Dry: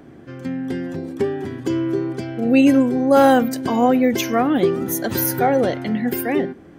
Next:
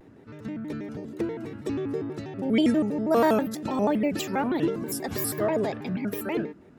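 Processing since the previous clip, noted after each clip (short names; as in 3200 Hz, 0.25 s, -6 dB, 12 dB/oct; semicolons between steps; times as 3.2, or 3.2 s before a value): shaped vibrato square 6.2 Hz, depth 250 cents; gain -8.5 dB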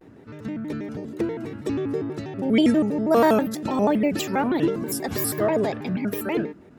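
gate with hold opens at -44 dBFS; gain +3.5 dB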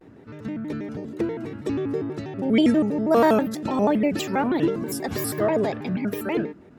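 high shelf 7600 Hz -5.5 dB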